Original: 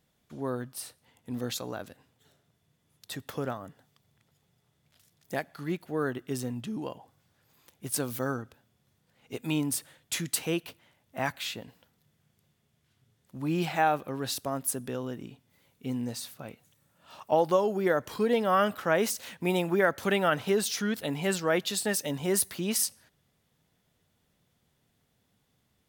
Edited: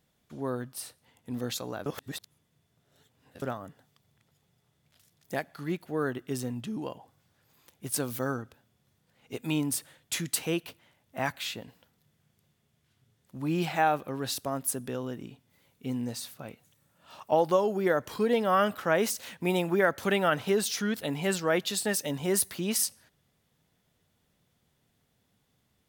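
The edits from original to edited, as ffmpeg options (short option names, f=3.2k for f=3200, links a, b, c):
-filter_complex "[0:a]asplit=3[a][b][c];[a]atrim=end=1.862[d];[b]atrim=start=1.858:end=3.422,asetpts=PTS-STARTPTS,areverse[e];[c]atrim=start=3.418[f];[d][e]acrossfade=d=0.004:c1=hsin:c2=hsin[g];[g][f]acrossfade=d=0.004:c1=hsin:c2=hsin"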